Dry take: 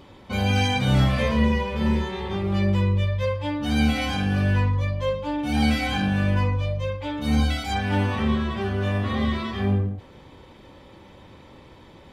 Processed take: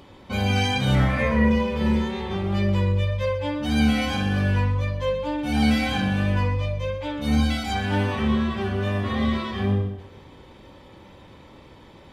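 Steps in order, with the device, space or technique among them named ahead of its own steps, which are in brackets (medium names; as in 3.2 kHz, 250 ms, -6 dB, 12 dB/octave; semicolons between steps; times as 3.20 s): 0.95–1.51 s: resonant high shelf 2.6 kHz -6 dB, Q 3; multi-head tape echo (multi-head delay 63 ms, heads first and second, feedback 54%, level -16 dB; wow and flutter 17 cents)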